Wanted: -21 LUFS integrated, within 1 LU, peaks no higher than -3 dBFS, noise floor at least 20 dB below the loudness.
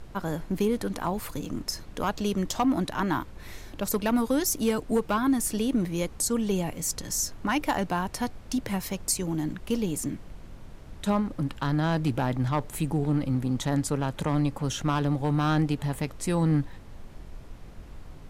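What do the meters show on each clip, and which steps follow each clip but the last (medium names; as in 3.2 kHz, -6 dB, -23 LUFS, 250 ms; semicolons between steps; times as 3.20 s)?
clipped samples 0.3%; clipping level -17.0 dBFS; noise floor -45 dBFS; noise floor target -48 dBFS; loudness -28.0 LUFS; peak level -17.0 dBFS; loudness target -21.0 LUFS
-> clip repair -17 dBFS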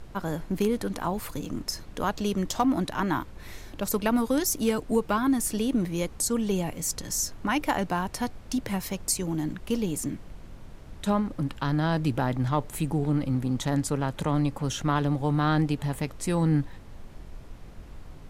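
clipped samples 0.0%; noise floor -45 dBFS; noise floor target -48 dBFS
-> noise print and reduce 6 dB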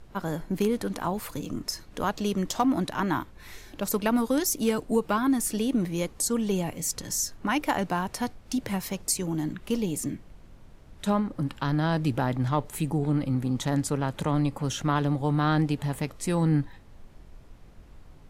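noise floor -50 dBFS; loudness -28.0 LUFS; peak level -11.0 dBFS; loudness target -21.0 LUFS
-> trim +7 dB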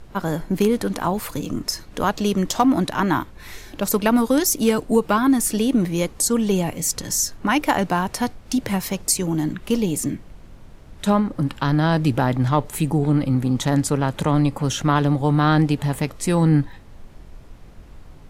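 loudness -21.0 LUFS; peak level -4.0 dBFS; noise floor -43 dBFS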